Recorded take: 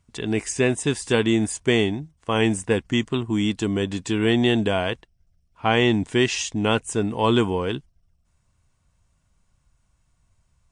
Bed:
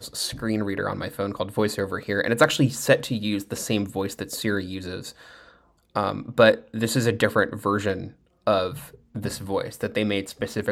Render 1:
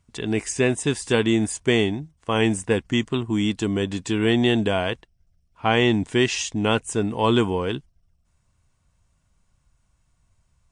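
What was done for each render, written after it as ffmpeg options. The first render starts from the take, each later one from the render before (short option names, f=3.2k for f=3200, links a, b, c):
-af anull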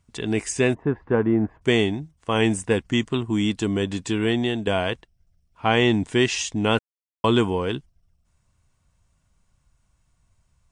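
-filter_complex "[0:a]asplit=3[a][b][c];[a]afade=t=out:st=0.73:d=0.02[d];[b]lowpass=f=1.5k:w=0.5412,lowpass=f=1.5k:w=1.3066,afade=t=in:st=0.73:d=0.02,afade=t=out:st=1.61:d=0.02[e];[c]afade=t=in:st=1.61:d=0.02[f];[d][e][f]amix=inputs=3:normalize=0,asplit=4[g][h][i][j];[g]atrim=end=4.67,asetpts=PTS-STARTPTS,afade=t=out:st=4.06:d=0.61:silence=0.375837[k];[h]atrim=start=4.67:end=6.79,asetpts=PTS-STARTPTS,afade=t=in:d=0.004:c=hsin:silence=0.375837,afade=t=out:st=2.116:d=0.004:c=hsin[l];[i]atrim=start=6.79:end=7.24,asetpts=PTS-STARTPTS,volume=0[m];[j]atrim=start=7.24,asetpts=PTS-STARTPTS,afade=t=in:d=0.004:c=hsin[n];[k][l][m][n]concat=n=4:v=0:a=1"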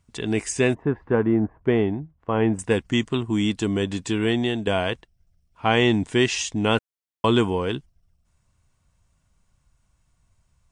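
-filter_complex "[0:a]asettb=1/sr,asplit=3[a][b][c];[a]atrim=end=1.404[d];[b]atrim=start=1.4:end=2.59,asetpts=PTS-STARTPTS,afade=t=in:d=0.004:c=qsin,afade=t=out:st=1.186:d=0.004:c=qsin,lowpass=1.4k[e];[c]atrim=start=2.586[f];[d][e]acrossfade=d=0.004:c1=hsin:c2=qsin[g];[g][f]acrossfade=d=0.004:c1=qsin:c2=hsin"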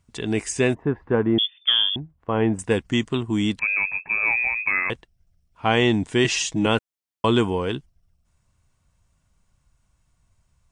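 -filter_complex "[0:a]asettb=1/sr,asplit=3[a][b][c];[a]atrim=end=1.384[d];[b]atrim=start=1.38:end=1.96,asetpts=PTS-STARTPTS,afade=t=in:d=0.004:c=qsin,afade=t=out:st=0.576:d=0.004:c=qsin,lowpass=f=3.1k:t=q:w=0.5098,lowpass=f=3.1k:t=q:w=0.6013,lowpass=f=3.1k:t=q:w=0.9,lowpass=f=3.1k:t=q:w=2.563,afreqshift=-3600[e];[c]atrim=start=1.956[f];[d][e]acrossfade=d=0.004:c1=hsin:c2=qsin[g];[g][f]acrossfade=d=0.004:c1=qsin:c2=hsin,asettb=1/sr,asplit=3[h][i][j];[h]atrim=end=3.594[k];[i]atrim=start=3.59:end=4.9,asetpts=PTS-STARTPTS,afade=t=in:d=0.004:c=qsin,afade=t=out:st=1.306:d=0.004:c=qsin,lowpass=f=2.3k:t=q:w=0.5098,lowpass=f=2.3k:t=q:w=0.6013,lowpass=f=2.3k:t=q:w=0.9,lowpass=f=2.3k:t=q:w=2.563,afreqshift=-2700[l];[j]atrim=start=4.896[m];[k][l]acrossfade=d=0.004:c1=hsin:c2=qsin[n];[n][m]acrossfade=d=0.004:c1=qsin:c2=hsin,asettb=1/sr,asplit=3[o][p][q];[o]atrim=end=6.244[r];[p]atrim=start=6.24:end=6.66,asetpts=PTS-STARTPTS,afade=t=in:d=0.004:c=qsin,afade=t=out:st=0.416:d=0.004:c=qsin,aecho=1:1:6.2:0.92,atrim=end_sample=18522[s];[q]atrim=start=6.656[t];[r][s]acrossfade=d=0.004:c1=hsin:c2=qsin[u];[u][t]acrossfade=d=0.004:c1=qsin:c2=hsin"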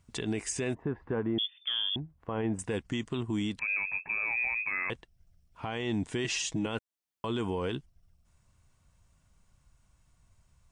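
-af "acompressor=threshold=-37dB:ratio=1.5,alimiter=limit=-23dB:level=0:latency=1:release=48"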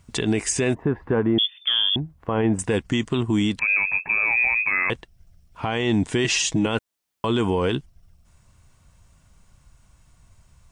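-af "volume=10.5dB"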